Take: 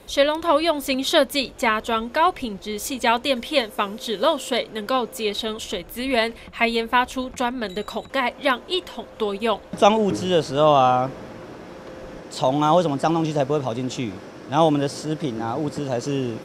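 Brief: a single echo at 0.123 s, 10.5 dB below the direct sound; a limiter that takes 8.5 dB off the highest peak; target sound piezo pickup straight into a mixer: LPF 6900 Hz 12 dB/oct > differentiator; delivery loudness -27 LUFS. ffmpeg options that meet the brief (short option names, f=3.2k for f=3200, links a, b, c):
-af "alimiter=limit=-10.5dB:level=0:latency=1,lowpass=6.9k,aderivative,aecho=1:1:123:0.299,volume=10dB"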